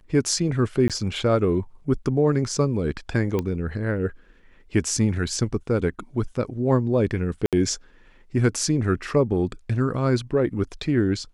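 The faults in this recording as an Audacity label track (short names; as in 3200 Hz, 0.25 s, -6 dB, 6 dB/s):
0.880000	0.900000	gap 17 ms
3.390000	3.390000	pop -13 dBFS
7.460000	7.530000	gap 67 ms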